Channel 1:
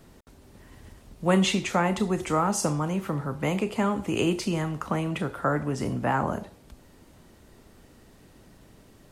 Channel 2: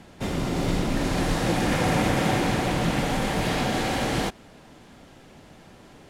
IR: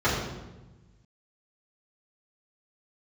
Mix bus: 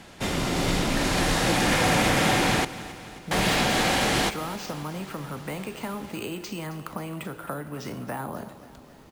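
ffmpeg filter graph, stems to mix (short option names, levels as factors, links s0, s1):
-filter_complex "[0:a]acrossover=split=100|760|6600[s0][s1][s2][s3];[s0]acompressor=threshold=0.001:ratio=4[s4];[s1]acompressor=threshold=0.0141:ratio=4[s5];[s2]acompressor=threshold=0.01:ratio=4[s6];[s3]acompressor=threshold=0.002:ratio=4[s7];[s4][s5][s6][s7]amix=inputs=4:normalize=0,acrusher=samples=4:mix=1:aa=0.000001,adelay=2050,volume=1.26,asplit=2[s8][s9];[s9]volume=0.168[s10];[1:a]tiltshelf=f=860:g=-4,asoftclip=type=hard:threshold=0.133,volume=1.33,asplit=3[s11][s12][s13];[s11]atrim=end=2.65,asetpts=PTS-STARTPTS,afade=t=out:st=2.646:d=0.004:c=hsin[s14];[s12]atrim=start=2.65:end=3.31,asetpts=PTS-STARTPTS,volume=0[s15];[s13]atrim=start=3.31,asetpts=PTS-STARTPTS,afade=t=in:d=0.004:c=hsin[s16];[s14][s15][s16]concat=n=3:v=0:a=1,asplit=2[s17][s18];[s18]volume=0.141[s19];[s10][s19]amix=inputs=2:normalize=0,aecho=0:1:268|536|804|1072|1340|1608|1876|2144|2412:1|0.59|0.348|0.205|0.121|0.0715|0.0422|0.0249|0.0147[s20];[s8][s17][s20]amix=inputs=3:normalize=0"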